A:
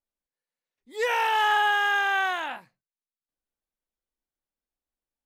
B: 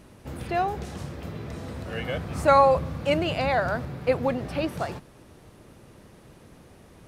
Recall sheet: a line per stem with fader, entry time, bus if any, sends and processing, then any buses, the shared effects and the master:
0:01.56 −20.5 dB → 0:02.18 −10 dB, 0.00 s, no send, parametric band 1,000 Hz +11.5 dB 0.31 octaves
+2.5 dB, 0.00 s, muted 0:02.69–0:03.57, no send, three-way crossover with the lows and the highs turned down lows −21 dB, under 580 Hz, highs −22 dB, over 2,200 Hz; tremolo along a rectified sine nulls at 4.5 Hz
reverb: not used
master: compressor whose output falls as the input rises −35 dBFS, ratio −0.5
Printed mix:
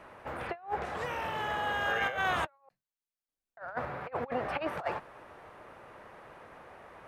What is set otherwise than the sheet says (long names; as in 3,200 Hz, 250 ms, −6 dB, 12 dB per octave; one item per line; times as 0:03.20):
stem A: missing parametric band 1,000 Hz +11.5 dB 0.31 octaves
stem B: missing tremolo along a rectified sine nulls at 4.5 Hz